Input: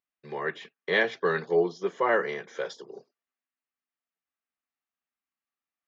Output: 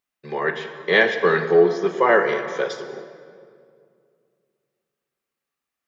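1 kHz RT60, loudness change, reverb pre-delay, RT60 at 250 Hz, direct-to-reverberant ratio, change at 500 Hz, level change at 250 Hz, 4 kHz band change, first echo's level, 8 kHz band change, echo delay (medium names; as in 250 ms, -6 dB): 2.1 s, +8.5 dB, 13 ms, 2.8 s, 7.5 dB, +9.0 dB, +8.5 dB, +8.0 dB, no echo, no reading, no echo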